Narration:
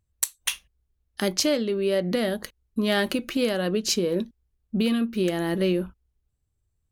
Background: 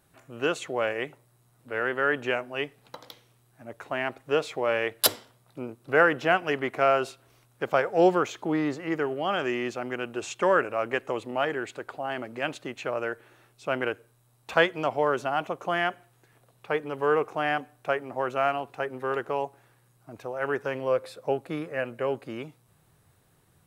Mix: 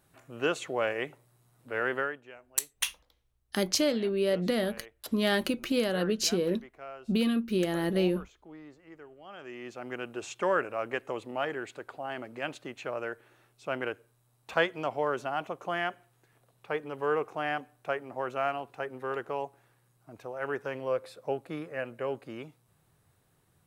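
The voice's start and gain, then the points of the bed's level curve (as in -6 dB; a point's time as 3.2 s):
2.35 s, -3.5 dB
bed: 1.99 s -2 dB
2.22 s -22 dB
9.21 s -22 dB
9.93 s -5 dB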